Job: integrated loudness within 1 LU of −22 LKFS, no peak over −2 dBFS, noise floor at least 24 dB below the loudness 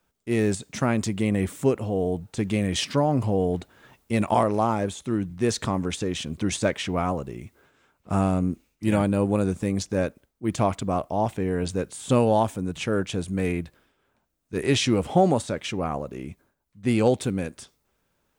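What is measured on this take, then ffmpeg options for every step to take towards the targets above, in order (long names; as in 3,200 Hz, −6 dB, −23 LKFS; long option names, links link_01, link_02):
integrated loudness −25.5 LKFS; sample peak −8.5 dBFS; target loudness −22.0 LKFS
→ -af "volume=3.5dB"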